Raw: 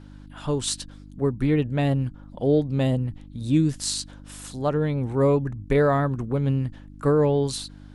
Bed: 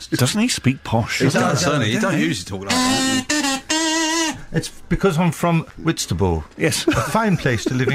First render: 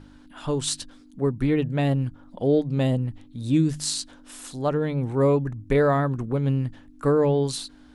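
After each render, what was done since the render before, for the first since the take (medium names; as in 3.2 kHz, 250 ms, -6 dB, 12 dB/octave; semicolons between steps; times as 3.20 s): de-hum 50 Hz, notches 4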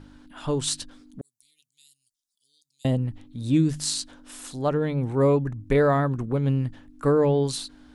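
1.21–2.85 s: inverse Chebyshev high-pass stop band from 1.7 kHz, stop band 60 dB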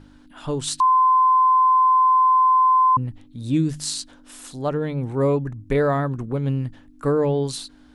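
0.80–2.97 s: bleep 1.03 kHz -12.5 dBFS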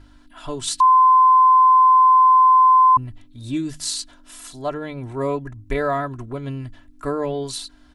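peaking EQ 290 Hz -7.5 dB 1.5 oct; comb 3 ms, depth 69%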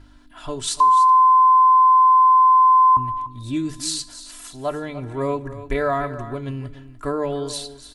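delay 294 ms -13.5 dB; two-slope reverb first 0.63 s, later 2.6 s, from -20 dB, DRR 15.5 dB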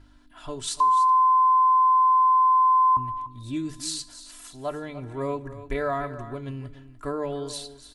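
trim -5.5 dB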